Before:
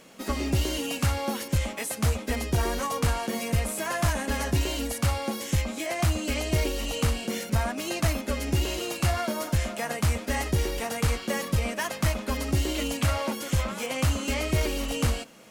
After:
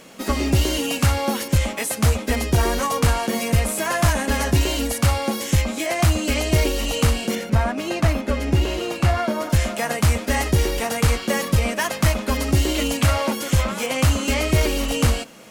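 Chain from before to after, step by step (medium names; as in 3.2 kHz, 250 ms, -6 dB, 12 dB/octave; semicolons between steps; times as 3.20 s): 7.35–9.50 s: treble shelf 4.3 kHz -12 dB; trim +7 dB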